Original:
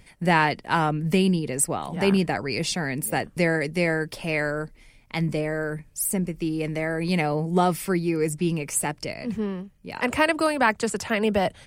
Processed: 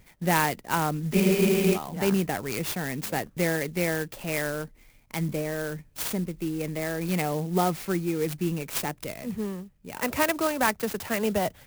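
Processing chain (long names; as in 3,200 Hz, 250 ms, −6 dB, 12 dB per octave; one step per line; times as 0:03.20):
frozen spectrum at 0:01.16, 0.59 s
converter with an unsteady clock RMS 0.051 ms
level −3.5 dB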